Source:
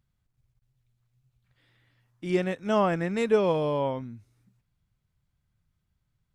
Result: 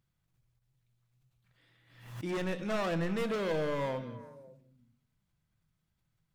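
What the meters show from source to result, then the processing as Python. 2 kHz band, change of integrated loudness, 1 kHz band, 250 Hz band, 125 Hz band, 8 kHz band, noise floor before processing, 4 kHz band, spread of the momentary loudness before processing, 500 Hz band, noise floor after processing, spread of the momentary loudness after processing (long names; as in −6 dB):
−3.5 dB, −7.5 dB, −8.5 dB, −6.5 dB, −5.0 dB, can't be measured, −78 dBFS, −3.0 dB, 13 LU, −8.0 dB, −80 dBFS, 15 LU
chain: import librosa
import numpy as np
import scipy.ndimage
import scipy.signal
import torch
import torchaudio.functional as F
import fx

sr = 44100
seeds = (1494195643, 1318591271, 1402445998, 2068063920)

y = fx.low_shelf(x, sr, hz=94.0, db=-8.0)
y = np.clip(10.0 ** (29.5 / 20.0) * y, -1.0, 1.0) / 10.0 ** (29.5 / 20.0)
y = fx.echo_stepped(y, sr, ms=183, hz=3200.0, octaves=-1.4, feedback_pct=70, wet_db=-11.5)
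y = fx.room_shoebox(y, sr, seeds[0], volume_m3=510.0, walls='furnished', distance_m=0.67)
y = fx.pre_swell(y, sr, db_per_s=80.0)
y = F.gain(torch.from_numpy(y), -1.5).numpy()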